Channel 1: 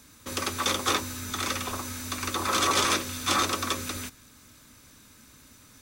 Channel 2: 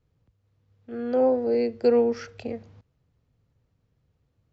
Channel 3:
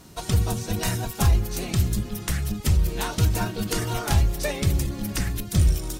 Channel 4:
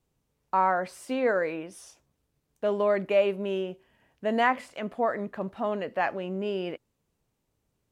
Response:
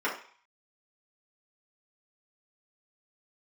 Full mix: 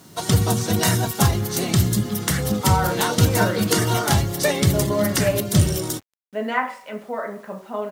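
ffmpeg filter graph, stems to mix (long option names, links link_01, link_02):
-filter_complex "[0:a]acompressor=threshold=-33dB:ratio=2,volume=-19dB[link_01];[1:a]adelay=1250,volume=-17.5dB[link_02];[2:a]bandreject=frequency=2500:width=8.3,volume=1dB[link_03];[3:a]adynamicequalizer=threshold=0.00447:dfrequency=5200:dqfactor=0.99:tfrequency=5200:tqfactor=0.99:attack=5:release=100:ratio=0.375:range=2:mode=boostabove:tftype=bell,adelay=2100,volume=-11.5dB,asplit=2[link_04][link_05];[link_05]volume=-8dB[link_06];[4:a]atrim=start_sample=2205[link_07];[link_06][link_07]afir=irnorm=-1:irlink=0[link_08];[link_01][link_02][link_03][link_04][link_08]amix=inputs=5:normalize=0,highpass=frequency=100:width=0.5412,highpass=frequency=100:width=1.3066,dynaudnorm=framelen=110:gausssize=3:maxgain=7dB,acrusher=bits=8:mix=0:aa=0.000001"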